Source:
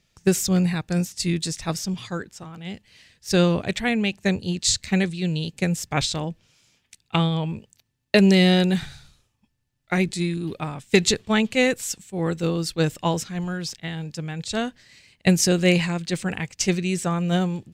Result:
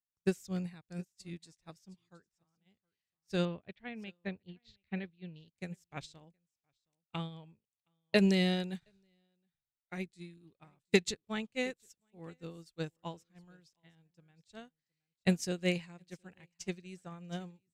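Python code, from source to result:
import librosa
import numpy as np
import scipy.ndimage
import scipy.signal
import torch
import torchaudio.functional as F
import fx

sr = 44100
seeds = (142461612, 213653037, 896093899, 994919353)

y = fx.lowpass(x, sr, hz=3600.0, slope=24, at=(3.45, 5.48))
y = y + 10.0 ** (-17.5 / 20.0) * np.pad(y, (int(719 * sr / 1000.0), 0))[:len(y)]
y = fx.upward_expand(y, sr, threshold_db=-35.0, expansion=2.5)
y = y * 10.0 ** (-7.5 / 20.0)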